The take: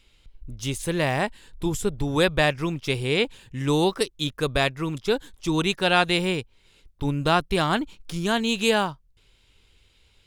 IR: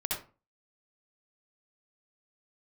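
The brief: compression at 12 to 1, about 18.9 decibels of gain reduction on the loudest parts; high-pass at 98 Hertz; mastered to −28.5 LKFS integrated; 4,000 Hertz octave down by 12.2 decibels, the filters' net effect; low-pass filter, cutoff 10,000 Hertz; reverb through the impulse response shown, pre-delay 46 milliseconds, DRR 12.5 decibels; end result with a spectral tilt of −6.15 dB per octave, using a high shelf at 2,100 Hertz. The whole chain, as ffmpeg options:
-filter_complex "[0:a]highpass=98,lowpass=10000,highshelf=frequency=2100:gain=-9,equalizer=frequency=4000:width_type=o:gain=-7.5,acompressor=threshold=-37dB:ratio=12,asplit=2[link_01][link_02];[1:a]atrim=start_sample=2205,adelay=46[link_03];[link_02][link_03]afir=irnorm=-1:irlink=0,volume=-17.5dB[link_04];[link_01][link_04]amix=inputs=2:normalize=0,volume=13.5dB"

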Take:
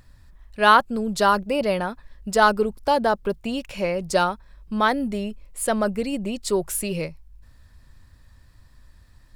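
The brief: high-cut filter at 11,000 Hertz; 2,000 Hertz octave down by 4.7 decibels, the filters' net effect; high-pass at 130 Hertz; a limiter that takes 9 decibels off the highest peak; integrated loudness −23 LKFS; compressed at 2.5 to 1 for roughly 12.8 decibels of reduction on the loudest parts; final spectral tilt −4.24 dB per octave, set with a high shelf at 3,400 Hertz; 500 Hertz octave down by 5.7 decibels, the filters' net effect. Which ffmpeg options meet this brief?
ffmpeg -i in.wav -af "highpass=130,lowpass=11000,equalizer=frequency=500:width_type=o:gain=-7,equalizer=frequency=2000:width_type=o:gain=-8,highshelf=frequency=3400:gain=4.5,acompressor=threshold=-33dB:ratio=2.5,volume=14dB,alimiter=limit=-13.5dB:level=0:latency=1" out.wav

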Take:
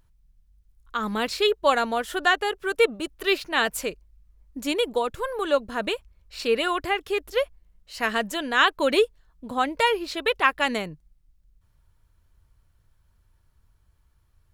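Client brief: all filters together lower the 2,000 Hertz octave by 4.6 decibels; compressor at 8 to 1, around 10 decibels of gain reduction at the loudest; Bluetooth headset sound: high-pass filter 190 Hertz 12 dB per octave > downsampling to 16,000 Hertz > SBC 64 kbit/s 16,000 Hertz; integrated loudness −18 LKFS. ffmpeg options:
ffmpeg -i in.wav -af "equalizer=frequency=2000:width_type=o:gain=-6,acompressor=threshold=-26dB:ratio=8,highpass=190,aresample=16000,aresample=44100,volume=14.5dB" -ar 16000 -c:a sbc -b:a 64k out.sbc

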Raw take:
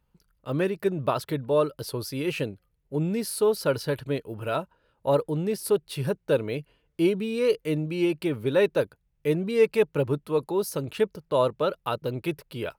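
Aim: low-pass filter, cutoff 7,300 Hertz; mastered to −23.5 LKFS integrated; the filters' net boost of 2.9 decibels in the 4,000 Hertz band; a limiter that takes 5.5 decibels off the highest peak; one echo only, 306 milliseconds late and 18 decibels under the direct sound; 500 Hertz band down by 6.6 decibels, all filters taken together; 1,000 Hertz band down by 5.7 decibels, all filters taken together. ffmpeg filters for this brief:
ffmpeg -i in.wav -af "lowpass=7300,equalizer=frequency=500:width_type=o:gain=-7,equalizer=frequency=1000:width_type=o:gain=-5.5,equalizer=frequency=4000:width_type=o:gain=4.5,alimiter=limit=-20dB:level=0:latency=1,aecho=1:1:306:0.126,volume=8.5dB" out.wav

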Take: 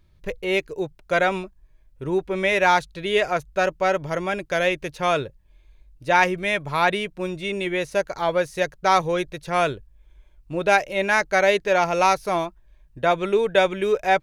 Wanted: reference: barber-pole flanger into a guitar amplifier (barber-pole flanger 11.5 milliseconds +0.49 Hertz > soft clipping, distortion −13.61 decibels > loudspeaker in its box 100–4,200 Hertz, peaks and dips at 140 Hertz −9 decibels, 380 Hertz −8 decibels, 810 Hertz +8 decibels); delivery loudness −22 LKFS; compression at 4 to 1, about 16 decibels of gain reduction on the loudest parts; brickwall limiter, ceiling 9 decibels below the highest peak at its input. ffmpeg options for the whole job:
ffmpeg -i in.wav -filter_complex "[0:a]acompressor=threshold=-33dB:ratio=4,alimiter=level_in=4.5dB:limit=-24dB:level=0:latency=1,volume=-4.5dB,asplit=2[link_01][link_02];[link_02]adelay=11.5,afreqshift=0.49[link_03];[link_01][link_03]amix=inputs=2:normalize=1,asoftclip=threshold=-37dB,highpass=100,equalizer=frequency=140:width_type=q:width=4:gain=-9,equalizer=frequency=380:width_type=q:width=4:gain=-8,equalizer=frequency=810:width_type=q:width=4:gain=8,lowpass=frequency=4200:width=0.5412,lowpass=frequency=4200:width=1.3066,volume=22.5dB" out.wav

